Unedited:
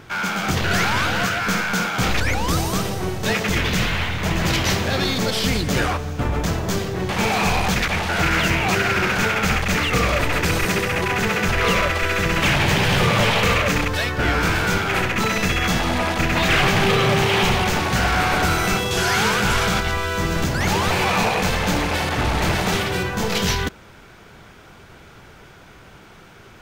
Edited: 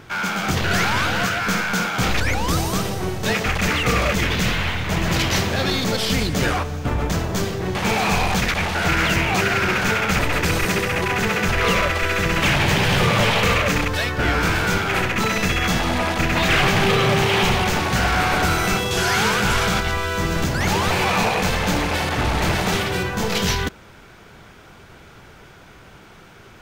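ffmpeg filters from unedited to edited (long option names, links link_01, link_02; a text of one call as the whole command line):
ffmpeg -i in.wav -filter_complex "[0:a]asplit=4[link_01][link_02][link_03][link_04];[link_01]atrim=end=3.462[link_05];[link_02]atrim=start=9.528:end=10.192[link_06];[link_03]atrim=start=3.458:end=9.532[link_07];[link_04]atrim=start=10.188[link_08];[link_05][link_06]acrossfade=duration=0.004:curve1=hsin:curve2=hsin[link_09];[link_09][link_07]acrossfade=duration=0.004:curve1=hsin:curve2=hsin[link_10];[link_10][link_08]acrossfade=duration=0.004:curve1=hsin:curve2=hsin" out.wav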